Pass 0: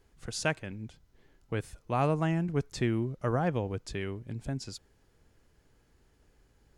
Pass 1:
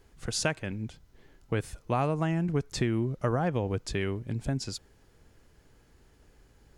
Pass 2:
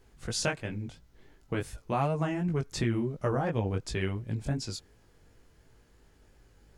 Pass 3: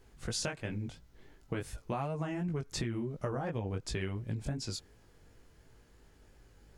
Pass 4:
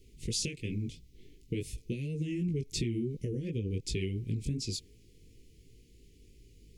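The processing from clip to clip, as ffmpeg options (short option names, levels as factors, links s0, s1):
-af "acompressor=threshold=0.0355:ratio=6,volume=1.88"
-af "flanger=delay=17.5:depth=4.4:speed=2.8,volume=1.26"
-af "acompressor=threshold=0.0251:ratio=6"
-af "asuperstop=centerf=1000:order=12:qfactor=0.57,volume=1.41"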